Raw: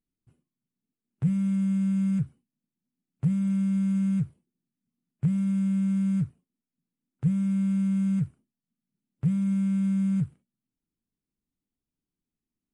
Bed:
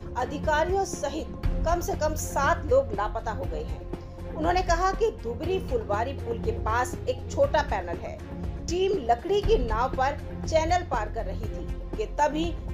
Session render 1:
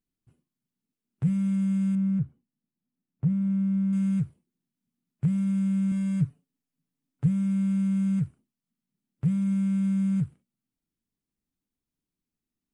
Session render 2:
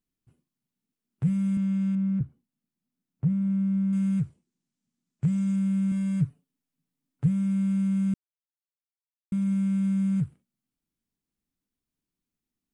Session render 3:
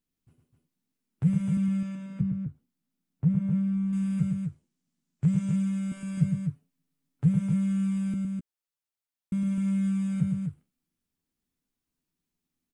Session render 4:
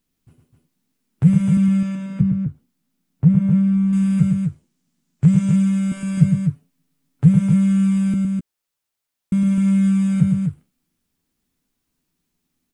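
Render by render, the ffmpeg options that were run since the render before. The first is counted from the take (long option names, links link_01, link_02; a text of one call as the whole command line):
ffmpeg -i in.wav -filter_complex "[0:a]asettb=1/sr,asplit=3[link_01][link_02][link_03];[link_01]atrim=end=1.954[link_04];[link_02]atrim=start=1.95:end=3.93,asetpts=PTS-STARTPTS,afade=type=in:duration=0.004:curve=qsin,afade=type=out:start_time=1.976:duration=0.004:curve=qsin,lowpass=frequency=1000:poles=1[link_05];[link_03]atrim=start=3.926[link_06];[link_04][link_05]acrossfade=duration=0.004:curve1=hsin:curve2=qsin[link_07];[link_07][link_06]acrossfade=duration=0.004:curve1=qsin:curve2=hsin,asettb=1/sr,asplit=3[link_08][link_09][link_10];[link_08]atrim=end=5.914[link_11];[link_09]atrim=start=5.91:end=7.26,asetpts=PTS-STARTPTS,afade=type=in:duration=0.004:curve=qsin,afade=type=out:start_time=1.346:duration=0.004:curve=qsin,aecho=1:1:7:0.65,atrim=end_sample=59535[link_12];[link_10]atrim=start=7.256[link_13];[link_11][link_12]acrossfade=duration=0.004:curve1=hsin:curve2=qsin[link_14];[link_14][link_13]acrossfade=duration=0.004:curve1=qsin:curve2=hsin" out.wav
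ffmpeg -i in.wav -filter_complex "[0:a]asettb=1/sr,asplit=3[link_01][link_02][link_03];[link_01]atrim=end=1.574[link_04];[link_02]atrim=start=1.57:end=2.21,asetpts=PTS-STARTPTS,afade=type=in:duration=0.004:curve=qsin,afade=type=out:start_time=0.636:duration=0.004:curve=qsin,highpass=130,lowpass=5600[link_05];[link_03]atrim=start=2.206[link_06];[link_04][link_05]acrossfade=duration=0.004:curve1=hsin:curve2=qsin[link_07];[link_07][link_06]acrossfade=duration=0.004:curve1=qsin:curve2=hsin,asettb=1/sr,asplit=3[link_08][link_09][link_10];[link_08]atrim=end=4.244[link_11];[link_09]atrim=start=4.24:end=5.56,asetpts=PTS-STARTPTS,afade=type=in:duration=0.004:curve=qsin,afade=type=out:start_time=1.316:duration=0.004:curve=qsin,lowpass=frequency=7300:width_type=q:width=1.9[link_12];[link_10]atrim=start=5.556[link_13];[link_11][link_12]acrossfade=duration=0.004:curve1=hsin:curve2=qsin[link_14];[link_14][link_13]acrossfade=duration=0.004:curve1=qsin:curve2=hsin,asplit=3[link_15][link_16][link_17];[link_15]atrim=end=8.14,asetpts=PTS-STARTPTS,afade=type=out:start_time=8.136:duration=0.004:curve=hsin[link_18];[link_16]atrim=start=8.14:end=9.32,asetpts=PTS-STARTPTS,volume=0[link_19];[link_17]atrim=start=9.32,asetpts=PTS-STARTPTS,afade=type=in:duration=0.004:curve=hsin[link_20];[link_18][link_19][link_20]concat=n=3:v=0:a=1" out.wav
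ffmpeg -i in.wav -filter_complex "[0:a]asplit=2[link_01][link_02];[link_02]adelay=12,volume=-10.5dB[link_03];[link_01][link_03]amix=inputs=2:normalize=0,aecho=1:1:110.8|256.6:0.501|0.501" out.wav
ffmpeg -i in.wav -af "volume=10.5dB" out.wav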